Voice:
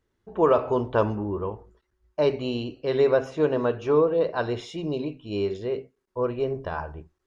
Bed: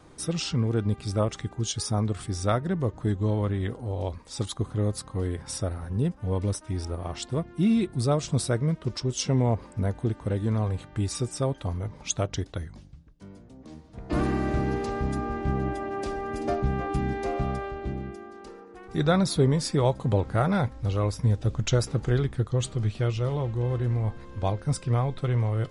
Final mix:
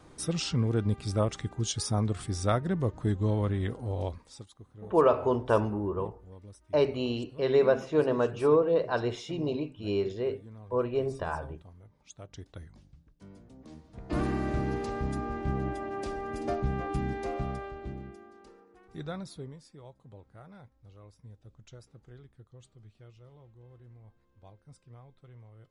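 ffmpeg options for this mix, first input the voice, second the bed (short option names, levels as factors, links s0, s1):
-filter_complex "[0:a]adelay=4550,volume=0.75[s0];[1:a]volume=6.31,afade=t=out:st=4.02:d=0.43:silence=0.1,afade=t=in:st=12.16:d=1.24:silence=0.125893,afade=t=out:st=17.01:d=2.63:silence=0.0707946[s1];[s0][s1]amix=inputs=2:normalize=0"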